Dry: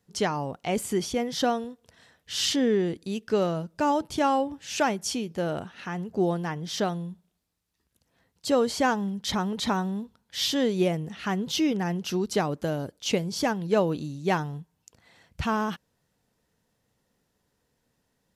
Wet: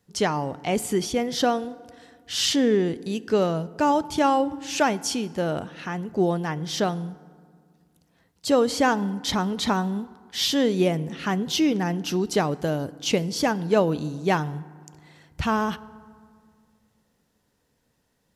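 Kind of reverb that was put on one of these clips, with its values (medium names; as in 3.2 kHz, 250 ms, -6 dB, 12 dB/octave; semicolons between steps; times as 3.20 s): FDN reverb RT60 2 s, low-frequency decay 1.4×, high-frequency decay 0.5×, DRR 18 dB; trim +3 dB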